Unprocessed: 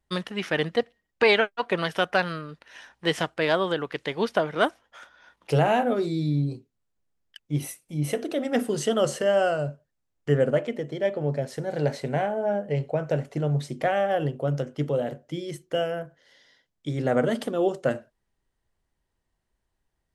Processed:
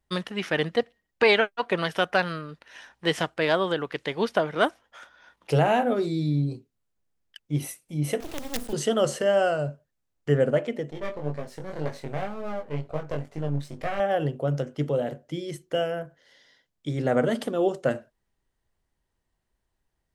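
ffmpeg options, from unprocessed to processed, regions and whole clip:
-filter_complex "[0:a]asettb=1/sr,asplit=3[s0][s1][s2];[s0]atrim=end=8.204[s3];[s1]atrim=start=8.2:end=8.73,asetpts=PTS-STARTPTS,afade=t=in:d=0.004:c=qsin,afade=t=out:st=0.526:d=0.004:c=qsin,acrusher=bits=4:dc=4:mix=0:aa=0.000001,acrossover=split=160|3000[s4][s5][s6];[s5]acompressor=threshold=0.0158:ratio=2.5:attack=3.2:release=140:knee=2.83:detection=peak[s7];[s4][s7][s6]amix=inputs=3:normalize=0[s8];[s2]atrim=start=8.726[s9];[s3][s8]acrossfade=d=0.004:c1=hsin:c2=qsin[s10];[s10][s9]acrossfade=d=0.004:c1=qsin:c2=hsin,asettb=1/sr,asplit=3[s11][s12][s13];[s11]atrim=end=10.904[s14];[s12]atrim=start=10.9:end=14,asetpts=PTS-STARTPTS,afade=t=in:d=0.004:c=qsin,afade=t=out:st=3.096:d=0.004:c=qsin,aeval=exprs='if(lt(val(0),0),0.251*val(0),val(0))':c=same,flanger=delay=19:depth=3:speed=2[s15];[s13]atrim=start=13.996[s16];[s14][s15]acrossfade=d=0.004:c1=hsin:c2=qsin[s17];[s17][s16]acrossfade=d=0.004:c1=qsin:c2=hsin"

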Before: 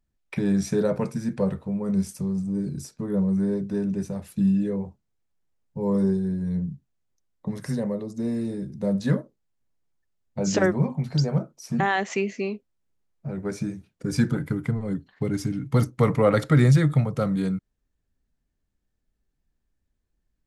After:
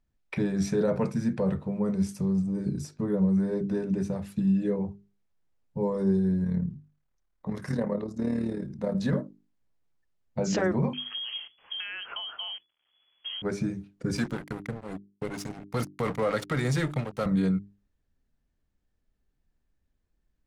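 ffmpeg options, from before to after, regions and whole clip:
-filter_complex "[0:a]asettb=1/sr,asplit=3[s0][s1][s2];[s0]atrim=end=6.444[s3];[s1]atrim=start=6.44:end=8.95,asetpts=PTS-STARTPTS,afade=t=in:d=0.004:c=qsin,afade=t=out:st=2.506:d=0.004:c=qsin,equalizer=f=1300:t=o:w=1.7:g=6,tremolo=f=37:d=0.667[s4];[s2]atrim=start=8.946[s5];[s3][s4]acrossfade=d=0.004:c1=hsin:c2=qsin[s6];[s6][s5]acrossfade=d=0.004:c1=qsin:c2=hsin,asettb=1/sr,asplit=3[s7][s8][s9];[s7]atrim=end=10.934[s10];[s8]atrim=start=10.93:end=13.42,asetpts=PTS-STARTPTS,afade=t=in:d=0.004:c=qsin,afade=t=out:st=2.486:d=0.004:c=qsin,acompressor=threshold=0.0251:ratio=10:attack=3.2:release=140:knee=1:detection=peak,acrusher=bits=9:dc=4:mix=0:aa=0.000001,lowpass=f=2900:t=q:w=0.5098,lowpass=f=2900:t=q:w=0.6013,lowpass=f=2900:t=q:w=0.9,lowpass=f=2900:t=q:w=2.563,afreqshift=-3400[s11];[s9]atrim=start=13.416[s12];[s10][s11]acrossfade=d=0.004:c1=hsin:c2=qsin[s13];[s13][s12]acrossfade=d=0.004:c1=qsin:c2=hsin,asettb=1/sr,asplit=3[s14][s15][s16];[s14]atrim=end=14.174[s17];[s15]atrim=start=14.17:end=17.26,asetpts=PTS-STARTPTS,afade=t=in:d=0.004:c=qsin,afade=t=out:st=3.086:d=0.004:c=qsin,highpass=f=310:p=1,aemphasis=mode=production:type=cd,aeval=exprs='sgn(val(0))*max(abs(val(0))-0.0168,0)':c=same[s18];[s16]atrim=start=17.256[s19];[s17][s18]acrossfade=d=0.004:c1=hsin:c2=qsin[s20];[s20][s19]acrossfade=d=0.004:c1=qsin:c2=hsin,alimiter=limit=0.112:level=0:latency=1:release=12,highshelf=f=7200:g=-11.5,bandreject=f=50:t=h:w=6,bandreject=f=100:t=h:w=6,bandreject=f=150:t=h:w=6,bandreject=f=200:t=h:w=6,bandreject=f=250:t=h:w=6,bandreject=f=300:t=h:w=6,bandreject=f=350:t=h:w=6,bandreject=f=400:t=h:w=6,volume=1.19"

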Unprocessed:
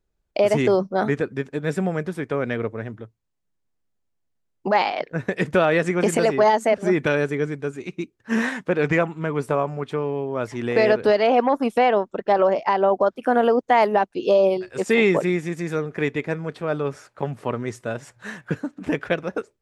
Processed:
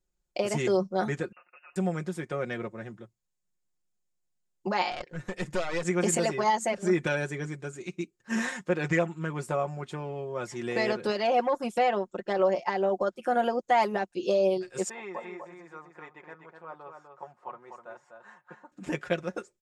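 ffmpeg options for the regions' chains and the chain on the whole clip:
-filter_complex "[0:a]asettb=1/sr,asplit=3[s0][s1][s2];[s0]atrim=end=1.324[s3];[s1]atrim=start=1.32:end=1.76,asetpts=PTS-STARTPTS,afade=t=in:d=0.004:c=qsin,afade=t=out:st=0.436:d=0.004:c=qsin,highpass=910,acompressor=threshold=0.00631:ratio=5:attack=3.2:release=140:knee=1:detection=peak,lowpass=f=2600:t=q:w=0.5098,lowpass=f=2600:t=q:w=0.6013,lowpass=f=2600:t=q:w=0.9,lowpass=f=2600:t=q:w=2.563,afreqshift=-3000[s4];[s2]atrim=start=1.756[s5];[s3][s4]acrossfade=d=0.004:c1=hsin:c2=qsin[s6];[s6][s5]acrossfade=d=0.004:c1=qsin:c2=hsin,asettb=1/sr,asplit=3[s7][s8][s9];[s7]atrim=end=4.914[s10];[s8]atrim=start=4.91:end=5.85,asetpts=PTS-STARTPTS,afade=t=in:d=0.004:c=qsin,afade=t=out:st=0.936:d=0.004:c=qsin,acompressor=mode=upward:threshold=0.0562:ratio=2.5:attack=3.2:release=140:knee=2.83:detection=peak,aeval=exprs='(tanh(7.94*val(0)+0.7)-tanh(0.7))/7.94':c=same[s11];[s9]atrim=start=5.846[s12];[s10][s11]acrossfade=d=0.004:c1=hsin:c2=qsin[s13];[s13][s12]acrossfade=d=0.004:c1=qsin:c2=hsin,asettb=1/sr,asplit=3[s14][s15][s16];[s14]atrim=end=14.894[s17];[s15]atrim=start=14.89:end=18.72,asetpts=PTS-STARTPTS,afade=t=in:d=0.004:c=qsin,afade=t=out:st=3.826:d=0.004:c=qsin,bandpass=f=950:t=q:w=2.9,aecho=1:1:249:0.501,atrim=end_sample=168903[s18];[s16]atrim=start=18.716[s19];[s17][s18]acrossfade=d=0.004:c1=hsin:c2=qsin[s20];[s20][s19]acrossfade=d=0.004:c1=qsin:c2=hsin,equalizer=f=7000:w=1.2:g=11.5,bandreject=f=6000:w=18,aecho=1:1:5.6:0.7,volume=0.355"

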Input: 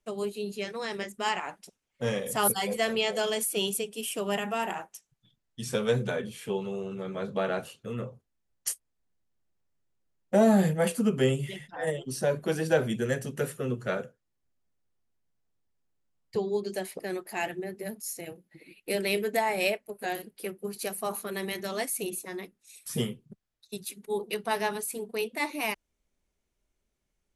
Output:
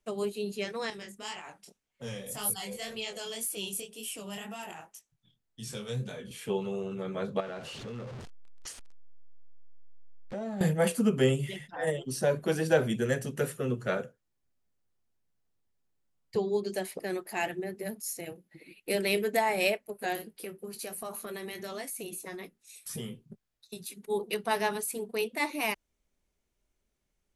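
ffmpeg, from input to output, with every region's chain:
-filter_complex "[0:a]asettb=1/sr,asplit=3[s0][s1][s2];[s0]atrim=end=0.904[s3];[s1]atrim=start=0.9:end=6.31,asetpts=PTS-STARTPTS,afade=t=in:d=0.004:c=qsin,afade=t=out:st=5.406:d=0.004:c=qsin,acrossover=split=150|3000[s4][s5][s6];[s5]acompressor=threshold=0.00631:ratio=2:attack=3.2:release=140:knee=2.83:detection=peak[s7];[s4][s7][s6]amix=inputs=3:normalize=0,flanger=delay=18.5:depth=7.4:speed=1.9[s8];[s2]atrim=start=6.306[s9];[s3][s8]acrossfade=d=0.004:c1=hsin:c2=qsin[s10];[s10][s9]acrossfade=d=0.004:c1=qsin:c2=hsin,asettb=1/sr,asplit=3[s11][s12][s13];[s11]atrim=end=7.404[s14];[s12]atrim=start=7.4:end=10.61,asetpts=PTS-STARTPTS,afade=t=in:d=0.004:c=qsin,afade=t=out:st=3.206:d=0.004:c=qsin,aeval=exprs='val(0)+0.5*0.015*sgn(val(0))':c=same,lowpass=5800,acompressor=threshold=0.0112:ratio=3:attack=3.2:release=140:knee=1:detection=peak[s15];[s13]atrim=start=10.606[s16];[s14][s15]acrossfade=d=0.004:c1=hsin:c2=qsin[s17];[s17][s16]acrossfade=d=0.004:c1=qsin:c2=hsin,asettb=1/sr,asplit=3[s18][s19][s20];[s18]atrim=end=20.204[s21];[s19]atrim=start=20.2:end=23.94,asetpts=PTS-STARTPTS,afade=t=in:d=0.004:c=qsin,afade=t=out:st=3.736:d=0.004:c=qsin,acompressor=threshold=0.0158:ratio=4:attack=3.2:release=140:knee=1:detection=peak,asplit=2[s22][s23];[s23]adelay=18,volume=0.316[s24];[s22][s24]amix=inputs=2:normalize=0,atrim=end_sample=164934[s25];[s20]atrim=start=23.936[s26];[s21][s25]acrossfade=d=0.004:c1=hsin:c2=qsin[s27];[s27][s26]acrossfade=d=0.004:c1=qsin:c2=hsin"

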